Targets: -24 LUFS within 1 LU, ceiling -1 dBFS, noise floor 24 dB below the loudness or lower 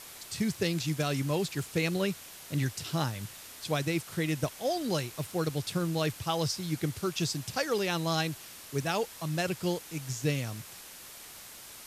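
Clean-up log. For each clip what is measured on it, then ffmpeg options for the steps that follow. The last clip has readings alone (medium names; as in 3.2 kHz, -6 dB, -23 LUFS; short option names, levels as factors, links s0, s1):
noise floor -48 dBFS; noise floor target -56 dBFS; loudness -32.0 LUFS; peak level -15.0 dBFS; loudness target -24.0 LUFS
-> -af "afftdn=nr=8:nf=-48"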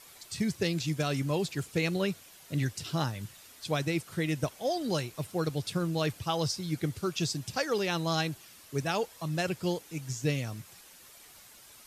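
noise floor -54 dBFS; noise floor target -56 dBFS
-> -af "afftdn=nr=6:nf=-54"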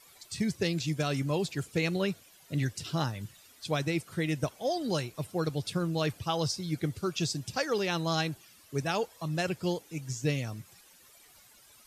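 noise floor -58 dBFS; loudness -32.0 LUFS; peak level -15.5 dBFS; loudness target -24.0 LUFS
-> -af "volume=2.51"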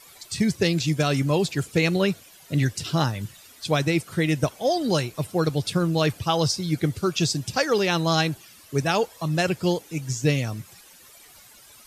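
loudness -24.0 LUFS; peak level -7.5 dBFS; noise floor -50 dBFS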